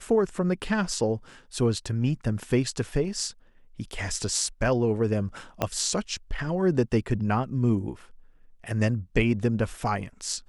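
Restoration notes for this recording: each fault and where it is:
5.62 s: pop -11 dBFS

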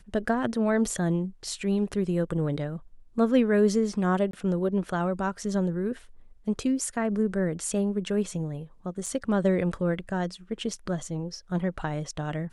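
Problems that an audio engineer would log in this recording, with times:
4.31–4.33 s: dropout 23 ms
9.06 s: dropout 4.3 ms

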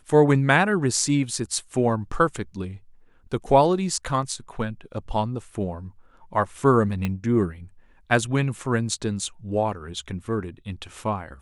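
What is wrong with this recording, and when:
7.05 s: pop -13 dBFS

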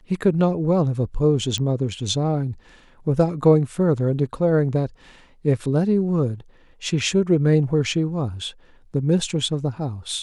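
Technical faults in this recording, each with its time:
1.58 s: pop -14 dBFS

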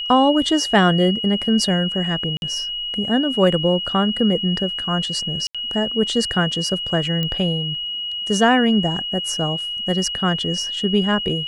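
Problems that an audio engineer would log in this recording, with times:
whine 2.9 kHz -24 dBFS
2.37–2.42 s: dropout 51 ms
5.47–5.55 s: dropout 76 ms
7.23 s: pop -11 dBFS

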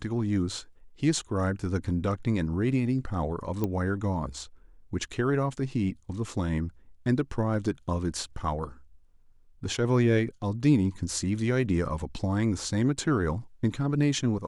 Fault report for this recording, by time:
3.64 s: pop -16 dBFS

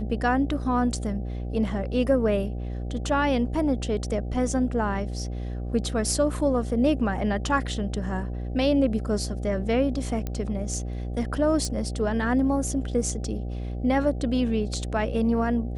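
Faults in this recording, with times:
buzz 60 Hz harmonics 13 -31 dBFS
10.27 s: pop -17 dBFS
11.65 s: pop

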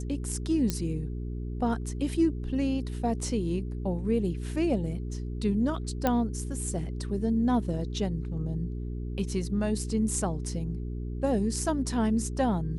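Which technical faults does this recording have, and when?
hum 60 Hz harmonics 7 -34 dBFS
0.70 s: pop -13 dBFS
6.07 s: pop -12 dBFS

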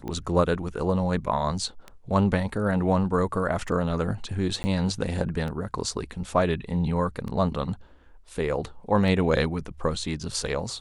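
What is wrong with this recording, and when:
tick 33 1/3 rpm -22 dBFS
4.63–4.64 s: dropout 10 ms

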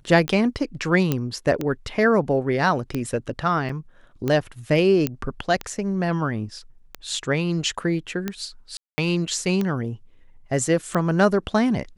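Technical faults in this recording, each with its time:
tick 45 rpm -12 dBFS
1.12 s: pop -8 dBFS
3.69 s: dropout 4 ms
5.07 s: pop -8 dBFS
8.77–8.98 s: dropout 210 ms

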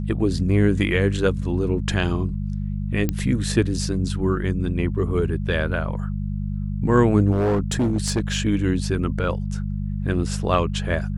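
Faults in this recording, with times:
hum 50 Hz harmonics 4 -26 dBFS
3.09 s: pop -9 dBFS
7.32–8.36 s: clipped -16.5 dBFS

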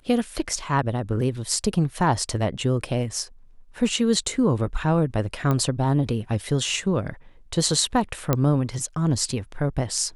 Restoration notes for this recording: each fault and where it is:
5.51 s: pop -12 dBFS
8.33 s: pop -6 dBFS

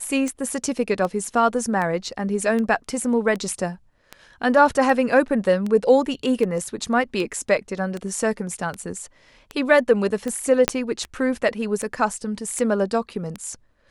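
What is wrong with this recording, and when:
tick 78 rpm -16 dBFS
10.68 s: pop -2 dBFS

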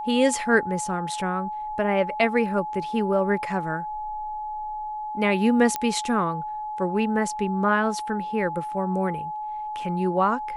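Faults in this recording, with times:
whine 850 Hz -29 dBFS
5.76 s: pop -10 dBFS

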